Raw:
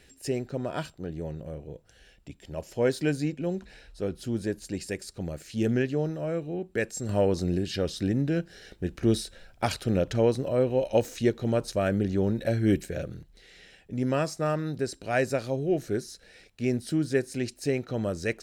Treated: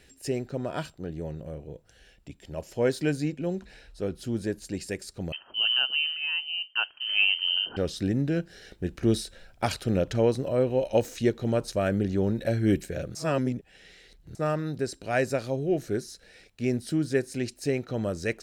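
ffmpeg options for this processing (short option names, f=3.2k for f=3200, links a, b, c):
-filter_complex "[0:a]asettb=1/sr,asplit=3[a][b][c];[a]atrim=end=5.324[d];[b]atrim=start=5.32:end=7.77,asetpts=PTS-STARTPTS,afade=t=in:d=0.004:c=qsin,afade=t=out:st=2.446:d=0.004:c=qsin,lowpass=f=2.7k:t=q:w=0.5098,lowpass=f=2.7k:t=q:w=0.6013,lowpass=f=2.7k:t=q:w=0.9,lowpass=f=2.7k:t=q:w=2.563,afreqshift=-3200[e];[c]atrim=start=7.766[f];[d][e]acrossfade=d=0.004:c1=hsin:c2=qsin[g];[g][f]acrossfade=d=0.004:c1=qsin:c2=hsin,asplit=3[h][i][j];[h]atrim=end=13.152[k];[i]atrim=start=13.148:end=14.352,asetpts=PTS-STARTPTS,areverse[l];[j]atrim=start=14.348[m];[k][l]acrossfade=d=0.004:c1=hsin:c2=hsin[n];[n][m]acrossfade=d=0.004:c1=hsin:c2=hsin"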